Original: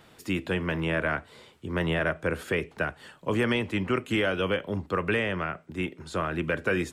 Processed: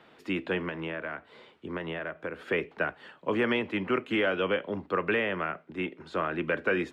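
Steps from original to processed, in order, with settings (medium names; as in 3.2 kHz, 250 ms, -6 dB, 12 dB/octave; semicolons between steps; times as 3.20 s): three-band isolator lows -14 dB, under 190 Hz, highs -20 dB, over 3.9 kHz; 0.67–2.47 s: compression 6:1, threshold -32 dBFS, peak gain reduction 9.5 dB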